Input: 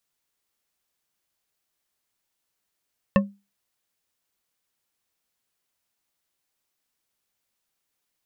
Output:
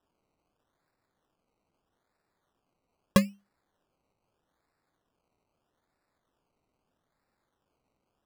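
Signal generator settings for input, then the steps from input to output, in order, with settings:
glass hit bar, lowest mode 200 Hz, decay 0.27 s, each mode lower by 3 dB, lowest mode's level -12 dB
decimation with a swept rate 20×, swing 60% 0.79 Hz

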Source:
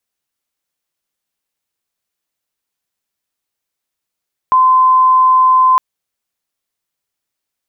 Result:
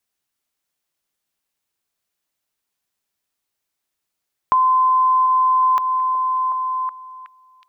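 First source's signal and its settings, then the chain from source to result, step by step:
tone sine 1030 Hz -6 dBFS 1.26 s
on a send: delay with a stepping band-pass 0.37 s, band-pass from 470 Hz, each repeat 0.7 oct, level -8 dB; on the sum: compressor, threshold -14 dBFS; notch 500 Hz, Q 12

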